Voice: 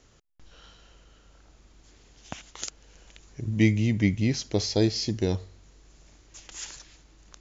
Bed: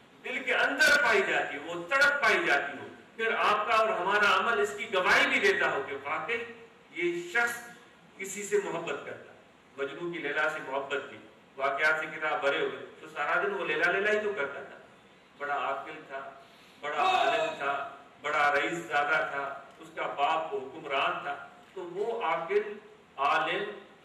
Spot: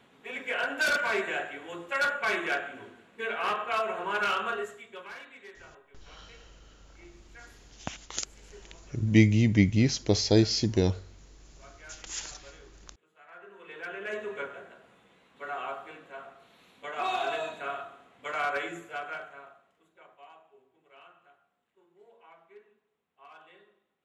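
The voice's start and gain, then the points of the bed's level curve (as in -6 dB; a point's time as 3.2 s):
5.55 s, +1.5 dB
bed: 4.51 s -4 dB
5.27 s -24.5 dB
13.23 s -24.5 dB
14.33 s -4.5 dB
18.58 s -4.5 dB
20.35 s -26 dB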